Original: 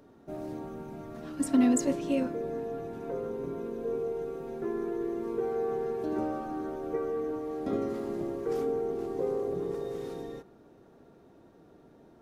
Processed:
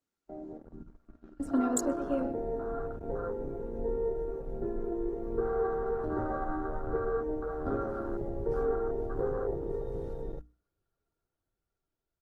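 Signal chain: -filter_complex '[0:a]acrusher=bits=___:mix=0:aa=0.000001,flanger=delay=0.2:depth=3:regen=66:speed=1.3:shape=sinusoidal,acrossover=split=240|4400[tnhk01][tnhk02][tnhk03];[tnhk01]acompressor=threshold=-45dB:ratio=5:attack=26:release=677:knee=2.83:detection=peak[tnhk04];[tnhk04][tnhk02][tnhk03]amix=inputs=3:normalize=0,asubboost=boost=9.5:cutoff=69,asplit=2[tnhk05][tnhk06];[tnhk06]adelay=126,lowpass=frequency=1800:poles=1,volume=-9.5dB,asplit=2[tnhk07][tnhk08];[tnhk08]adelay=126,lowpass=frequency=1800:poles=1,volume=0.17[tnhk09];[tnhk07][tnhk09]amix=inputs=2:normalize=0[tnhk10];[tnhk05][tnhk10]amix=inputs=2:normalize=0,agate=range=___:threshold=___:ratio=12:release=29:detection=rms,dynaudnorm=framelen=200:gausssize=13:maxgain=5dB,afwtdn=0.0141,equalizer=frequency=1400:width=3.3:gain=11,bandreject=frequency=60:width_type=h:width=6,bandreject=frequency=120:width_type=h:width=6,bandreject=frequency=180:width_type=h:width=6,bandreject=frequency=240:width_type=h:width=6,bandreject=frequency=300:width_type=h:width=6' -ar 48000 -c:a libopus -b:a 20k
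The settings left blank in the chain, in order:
10, -15dB, -45dB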